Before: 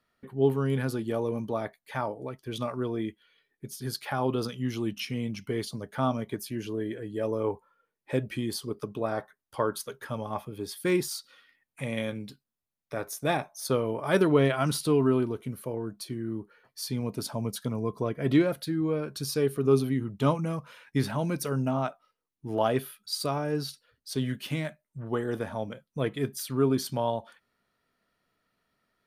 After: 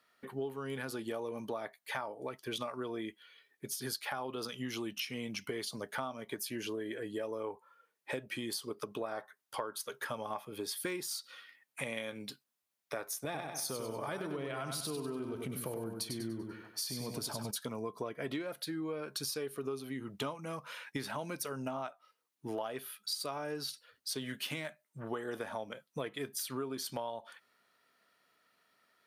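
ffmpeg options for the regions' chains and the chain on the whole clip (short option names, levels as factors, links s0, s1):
-filter_complex "[0:a]asettb=1/sr,asplit=3[s0][s1][s2];[s0]atrim=end=13.244[s3];[s1]atrim=start=13.24:end=17.51,asetpts=PTS-STARTPTS,afade=t=in:d=0.004:c=qsin,afade=t=out:st=4.266:d=0.004:c=qsin,lowshelf=f=230:g=12,acompressor=threshold=0.0316:ratio=2.5:attack=3.2:release=140:knee=1:detection=peak,aecho=1:1:97|194|291|388|485:0.501|0.2|0.0802|0.0321|0.0128,atrim=end_sample=188307[s4];[s2]atrim=start=17.506[s5];[s3][s4]acrossfade=d=0.004:c1=hsin:c2=qsin[s6];[s6][s5]acrossfade=d=0.004:c1=qsin:c2=hsin,highpass=f=670:p=1,acompressor=threshold=0.00891:ratio=12,volume=2"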